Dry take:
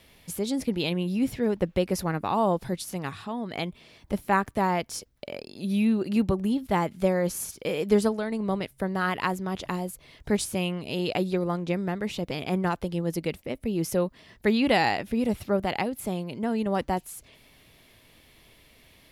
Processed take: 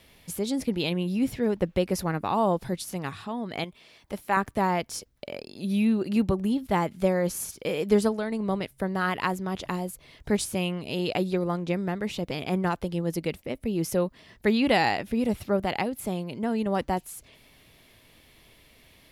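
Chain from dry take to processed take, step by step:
0:03.64–0:04.37: low-shelf EQ 340 Hz −10.5 dB

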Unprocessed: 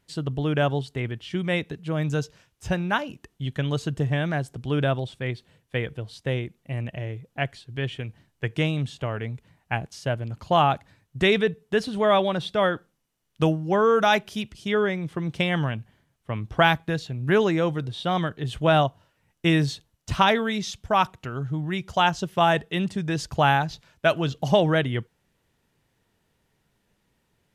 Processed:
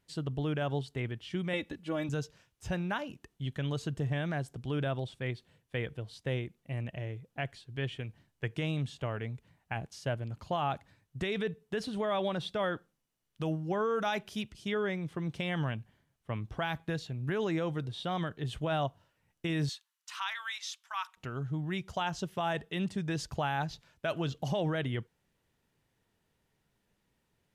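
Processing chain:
0:01.53–0:02.09: comb filter 3.5 ms, depth 77%
brickwall limiter −16.5 dBFS, peak gain reduction 11 dB
0:19.69–0:21.17: Butterworth high-pass 1,000 Hz 36 dB per octave
level −6.5 dB

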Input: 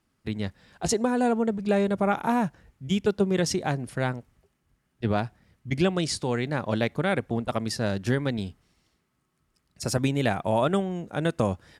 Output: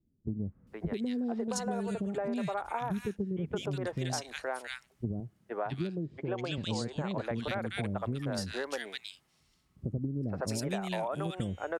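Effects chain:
0:05.20–0:06.58: loudspeaker in its box 160–7,500 Hz, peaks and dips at 250 Hz −8 dB, 1,300 Hz −3 dB, 2,000 Hz −8 dB, 5,500 Hz −6 dB
three-band delay without the direct sound lows, mids, highs 470/670 ms, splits 410/1,800 Hz
downward compressor 10 to 1, threshold −30 dBFS, peak gain reduction 10.5 dB

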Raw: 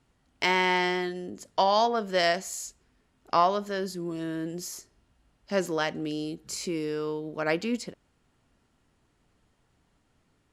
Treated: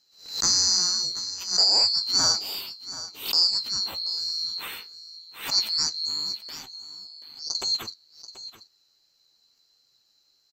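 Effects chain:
neighbouring bands swapped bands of 4,000 Hz
0:02.38–0:03.53: parametric band 1,900 Hz −10.5 dB 1.4 octaves
0:06.49–0:07.55: output level in coarse steps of 24 dB
flanger 0.91 Hz, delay 7 ms, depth 7.1 ms, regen +49%
single-tap delay 733 ms −14.5 dB
background raised ahead of every attack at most 120 dB per second
level +6.5 dB

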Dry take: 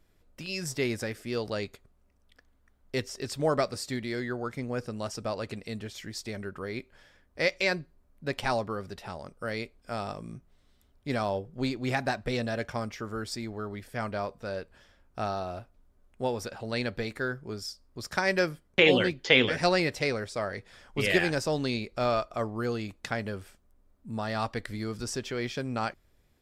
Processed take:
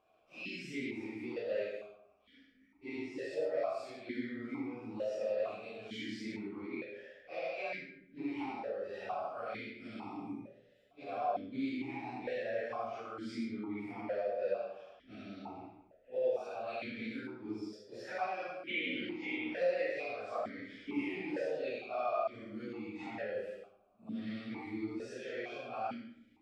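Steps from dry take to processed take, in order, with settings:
random phases in long frames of 200 ms
downward compressor 4 to 1, threshold −41 dBFS, peak gain reduction 20.5 dB
flanger 0.16 Hz, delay 9.1 ms, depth 1.7 ms, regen −41%
comb and all-pass reverb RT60 0.79 s, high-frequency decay 0.5×, pre-delay 35 ms, DRR 3 dB
formant filter that steps through the vowels 2.2 Hz
level +16.5 dB

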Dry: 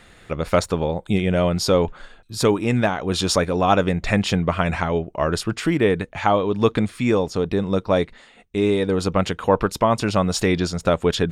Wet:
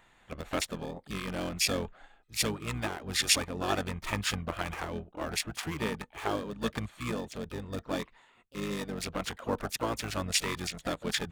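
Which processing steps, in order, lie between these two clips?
adaptive Wiener filter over 9 samples
first-order pre-emphasis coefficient 0.9
pitch-shifted copies added −12 semitones −1 dB, +4 semitones −15 dB, +5 semitones −14 dB

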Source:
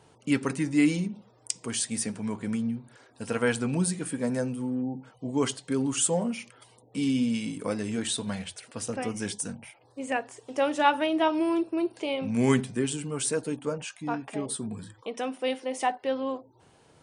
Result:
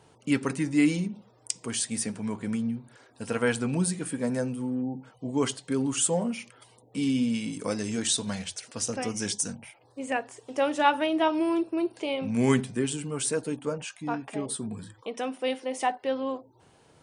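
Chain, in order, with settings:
0:07.52–0:09.58: parametric band 6,000 Hz +9.5 dB 0.9 octaves

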